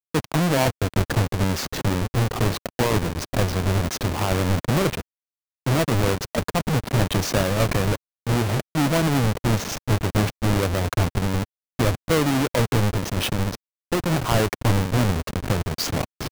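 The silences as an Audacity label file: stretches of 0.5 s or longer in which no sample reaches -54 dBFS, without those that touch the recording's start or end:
5.010000	5.660000	silence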